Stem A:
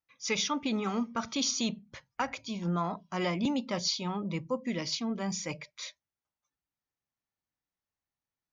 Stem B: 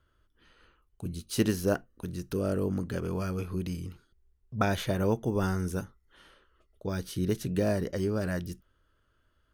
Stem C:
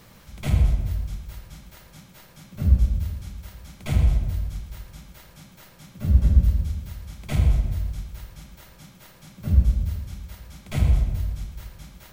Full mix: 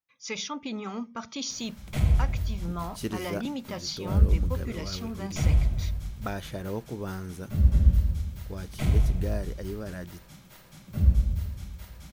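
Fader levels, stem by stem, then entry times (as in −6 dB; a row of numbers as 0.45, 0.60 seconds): −3.5, −6.5, −3.0 decibels; 0.00, 1.65, 1.50 seconds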